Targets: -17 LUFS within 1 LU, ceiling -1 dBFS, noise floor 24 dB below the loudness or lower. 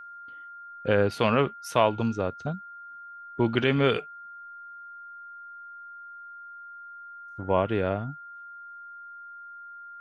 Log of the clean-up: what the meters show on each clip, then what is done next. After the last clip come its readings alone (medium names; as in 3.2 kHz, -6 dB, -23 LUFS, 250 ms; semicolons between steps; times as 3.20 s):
steady tone 1.4 kHz; tone level -41 dBFS; loudness -26.5 LUFS; peak level -8.0 dBFS; loudness target -17.0 LUFS
-> band-stop 1.4 kHz, Q 30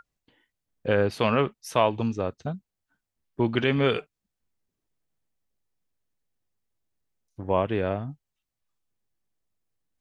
steady tone not found; loudness -26.0 LUFS; peak level -8.0 dBFS; loudness target -17.0 LUFS
-> trim +9 dB; peak limiter -1 dBFS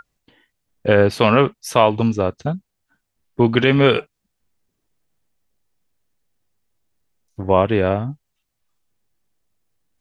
loudness -17.5 LUFS; peak level -1.0 dBFS; noise floor -76 dBFS